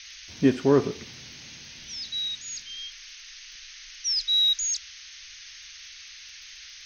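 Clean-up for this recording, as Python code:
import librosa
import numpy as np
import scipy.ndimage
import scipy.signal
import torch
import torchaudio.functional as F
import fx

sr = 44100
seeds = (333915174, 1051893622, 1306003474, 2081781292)

y = fx.fix_declick_ar(x, sr, threshold=6.5)
y = fx.noise_reduce(y, sr, print_start_s=6.07, print_end_s=6.57, reduce_db=26.0)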